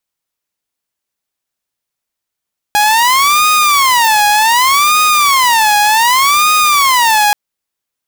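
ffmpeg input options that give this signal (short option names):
-f lavfi -i "aevalsrc='0.562*(2*mod((1035*t-205/(2*PI*0.66)*sin(2*PI*0.66*t)),1)-1)':d=4.58:s=44100"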